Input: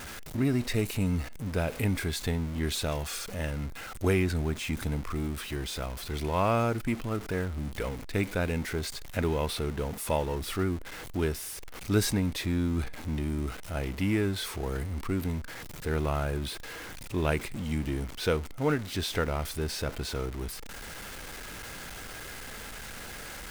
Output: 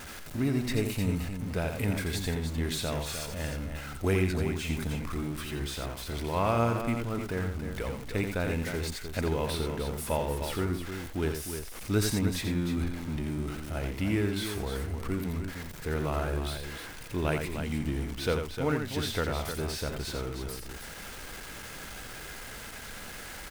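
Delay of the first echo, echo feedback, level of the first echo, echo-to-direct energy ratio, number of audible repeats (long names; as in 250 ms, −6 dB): 86 ms, repeats not evenly spaced, −6.5 dB, −4.0 dB, 2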